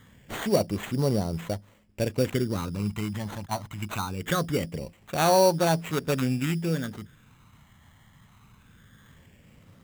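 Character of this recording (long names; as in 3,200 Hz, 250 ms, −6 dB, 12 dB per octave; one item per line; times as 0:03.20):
phaser sweep stages 12, 0.22 Hz, lowest notch 460–2,000 Hz
aliases and images of a low sample rate 5,100 Hz, jitter 0%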